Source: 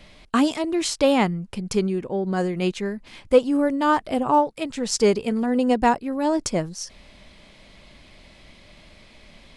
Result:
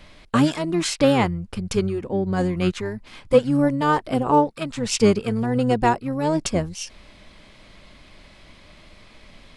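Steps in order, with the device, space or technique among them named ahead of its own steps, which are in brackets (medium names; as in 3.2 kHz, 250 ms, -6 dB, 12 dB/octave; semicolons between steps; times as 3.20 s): octave pedal (harmony voices -12 st -6 dB)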